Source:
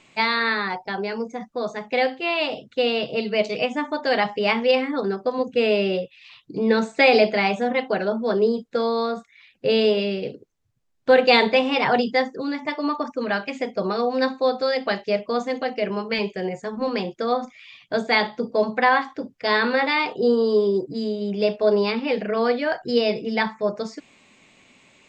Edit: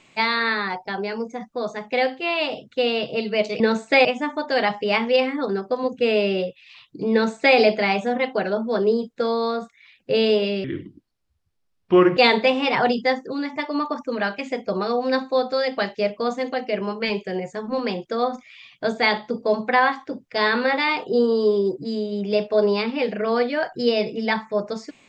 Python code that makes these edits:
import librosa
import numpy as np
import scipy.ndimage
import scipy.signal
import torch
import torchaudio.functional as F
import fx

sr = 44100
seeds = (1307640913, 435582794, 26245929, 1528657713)

y = fx.edit(x, sr, fx.duplicate(start_s=6.67, length_s=0.45, to_s=3.6),
    fx.speed_span(start_s=10.19, length_s=1.07, speed=0.7), tone=tone)